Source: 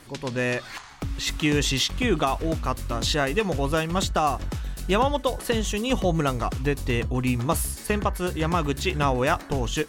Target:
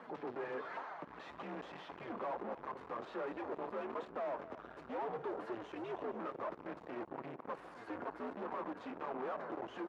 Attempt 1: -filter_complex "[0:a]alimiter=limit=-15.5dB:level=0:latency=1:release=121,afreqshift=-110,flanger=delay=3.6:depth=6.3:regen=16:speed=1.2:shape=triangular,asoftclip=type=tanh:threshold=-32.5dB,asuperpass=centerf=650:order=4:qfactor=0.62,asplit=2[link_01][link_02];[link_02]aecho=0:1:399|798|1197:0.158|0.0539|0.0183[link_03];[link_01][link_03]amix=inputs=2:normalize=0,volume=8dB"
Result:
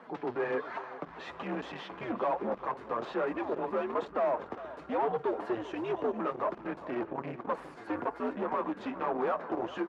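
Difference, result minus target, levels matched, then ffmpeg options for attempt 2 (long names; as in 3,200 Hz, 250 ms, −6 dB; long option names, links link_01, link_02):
echo 157 ms late; soft clipping: distortion −5 dB
-filter_complex "[0:a]alimiter=limit=-15.5dB:level=0:latency=1:release=121,afreqshift=-110,flanger=delay=3.6:depth=6.3:regen=16:speed=1.2:shape=triangular,asoftclip=type=tanh:threshold=-44.5dB,asuperpass=centerf=650:order=4:qfactor=0.62,asplit=2[link_01][link_02];[link_02]aecho=0:1:242|484|726:0.158|0.0539|0.0183[link_03];[link_01][link_03]amix=inputs=2:normalize=0,volume=8dB"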